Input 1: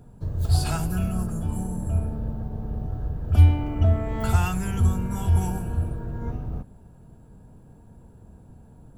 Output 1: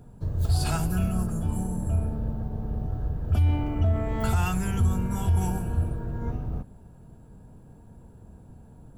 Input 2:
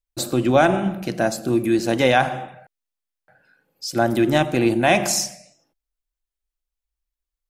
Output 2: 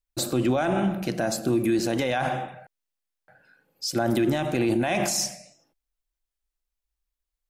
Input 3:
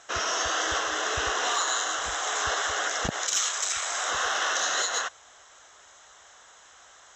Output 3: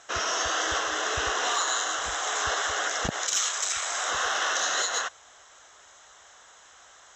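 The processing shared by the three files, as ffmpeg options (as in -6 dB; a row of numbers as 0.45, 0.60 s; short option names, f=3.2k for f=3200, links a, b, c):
-af "alimiter=limit=-15dB:level=0:latency=1:release=39"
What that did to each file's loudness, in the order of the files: -2.5, -5.5, 0.0 LU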